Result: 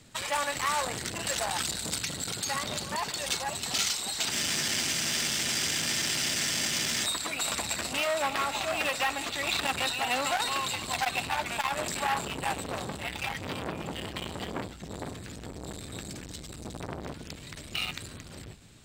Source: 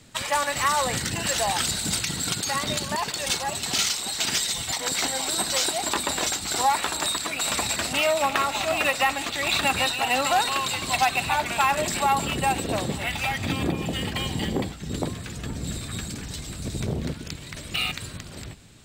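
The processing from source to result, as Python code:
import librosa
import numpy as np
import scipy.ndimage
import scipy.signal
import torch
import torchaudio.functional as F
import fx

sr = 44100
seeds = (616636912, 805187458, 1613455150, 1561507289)

y = 10.0 ** (-14.0 / 20.0) * (np.abs((x / 10.0 ** (-14.0 / 20.0) + 3.0) % 4.0 - 2.0) - 1.0)
y = fx.spec_freeze(y, sr, seeds[0], at_s=4.35, hold_s=2.69)
y = fx.transformer_sat(y, sr, knee_hz=1900.0)
y = y * librosa.db_to_amplitude(-3.0)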